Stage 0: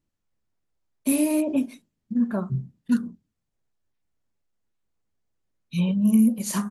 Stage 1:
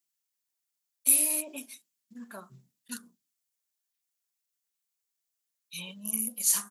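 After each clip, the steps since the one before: differentiator; gain +6.5 dB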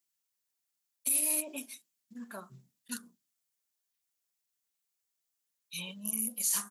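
limiter -19 dBFS, peak gain reduction 11 dB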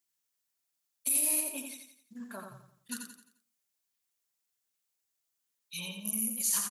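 feedback echo 87 ms, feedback 40%, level -5.5 dB

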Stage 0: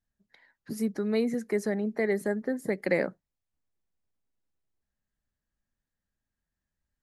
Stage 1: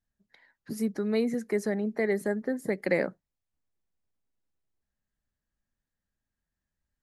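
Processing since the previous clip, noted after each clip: nothing audible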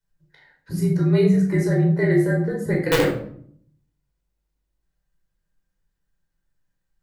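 frequency shift -48 Hz; wrapped overs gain 15.5 dB; shoebox room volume 870 m³, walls furnished, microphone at 4.8 m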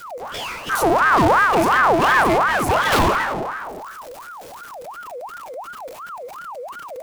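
envelope flanger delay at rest 11.3 ms, full sweep at -14 dBFS; power-law curve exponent 0.35; ring modulator with a swept carrier 960 Hz, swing 50%, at 2.8 Hz

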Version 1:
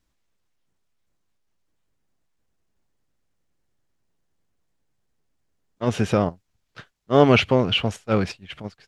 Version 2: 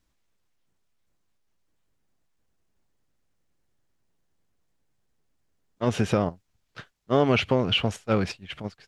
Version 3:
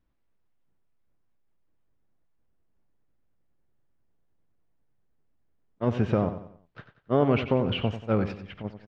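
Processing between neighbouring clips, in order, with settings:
compressor 2.5:1, threshold -19 dBFS, peak gain reduction 7.5 dB
tape spacing loss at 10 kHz 33 dB; feedback echo 92 ms, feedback 39%, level -11 dB

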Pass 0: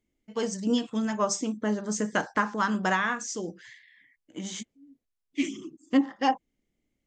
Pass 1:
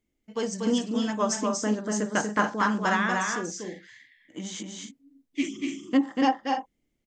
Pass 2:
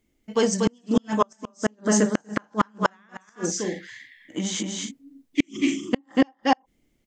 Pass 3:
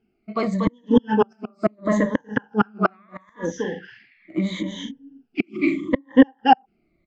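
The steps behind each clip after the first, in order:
loudspeakers at several distances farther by 82 m -4 dB, 97 m -9 dB
flipped gate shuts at -16 dBFS, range -39 dB; gain +8.5 dB
moving spectral ripple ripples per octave 1.1, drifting -0.76 Hz, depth 19 dB; air absorption 340 m; gain +1 dB

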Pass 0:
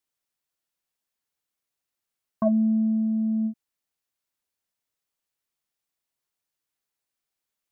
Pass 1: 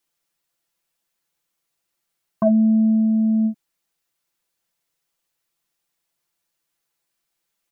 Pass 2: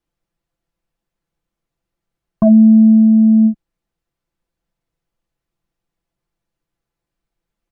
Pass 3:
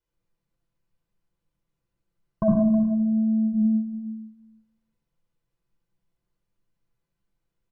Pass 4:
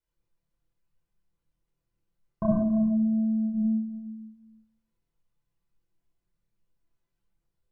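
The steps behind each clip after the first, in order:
comb 5.9 ms, depth 60%; in parallel at +1 dB: limiter -20 dBFS, peak gain reduction 8.5 dB
tilt -4 dB/oct
echo 0.317 s -16 dB; reverb RT60 0.85 s, pre-delay 60 ms, DRR 0.5 dB; gain -8.5 dB
chorus voices 4, 0.52 Hz, delay 27 ms, depth 1.6 ms

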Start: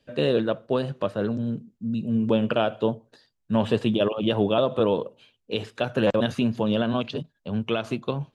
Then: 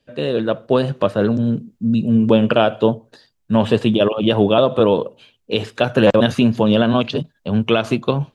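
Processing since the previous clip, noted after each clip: AGC gain up to 11.5 dB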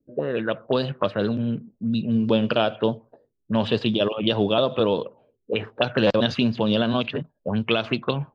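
envelope low-pass 320–4800 Hz up, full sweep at -12 dBFS; gain -7 dB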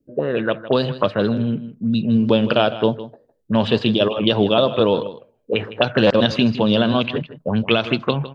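echo 0.158 s -15 dB; gain +4.5 dB

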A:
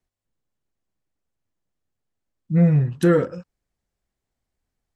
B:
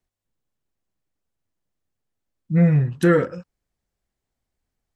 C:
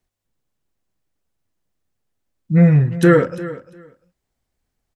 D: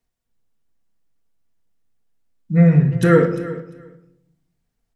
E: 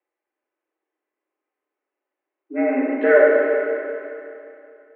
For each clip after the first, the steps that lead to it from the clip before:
dynamic EQ 1900 Hz, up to +6 dB, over -42 dBFS, Q 1.4
feedback echo 0.348 s, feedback 16%, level -16 dB; gain +4.5 dB
shoebox room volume 1900 m³, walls furnished, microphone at 1.7 m; gain -3 dB
mistuned SSB +110 Hz 220–2500 Hz; Schroeder reverb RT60 2.7 s, combs from 31 ms, DRR -2 dB; gain -1 dB

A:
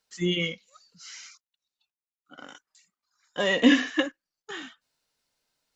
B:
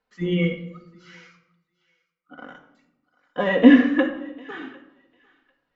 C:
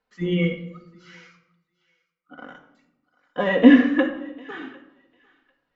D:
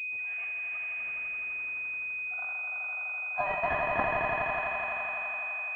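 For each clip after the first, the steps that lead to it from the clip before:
LPF 1700 Hz 12 dB/oct; thinning echo 0.748 s, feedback 20%, high-pass 970 Hz, level -22.5 dB; shoebox room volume 2900 m³, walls furnished, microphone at 1.9 m; gain +4 dB
nothing audible
brick-wall FIR high-pass 600 Hz; swelling echo 84 ms, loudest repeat 5, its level -5 dB; pulse-width modulation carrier 2500 Hz

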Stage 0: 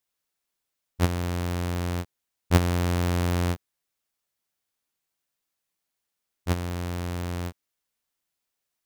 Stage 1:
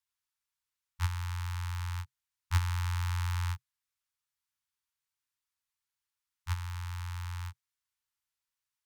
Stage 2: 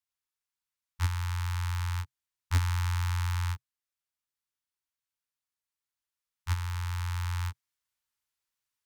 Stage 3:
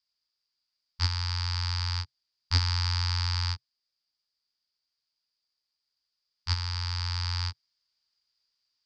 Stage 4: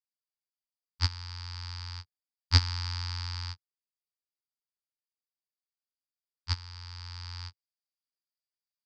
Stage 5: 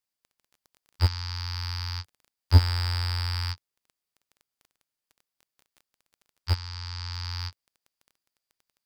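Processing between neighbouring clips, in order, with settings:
Chebyshev band-stop 130–880 Hz, order 5; added harmonics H 5 -26 dB, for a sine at -6.5 dBFS; high shelf 11000 Hz -5.5 dB; gain -7 dB
vocal rider 2 s; sample leveller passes 1
synth low-pass 4800 Hz, resonance Q 15
upward expander 2.5:1, over -38 dBFS; gain +4.5 dB
crackle 15/s -50 dBFS; slew limiter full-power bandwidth 110 Hz; gain +7.5 dB

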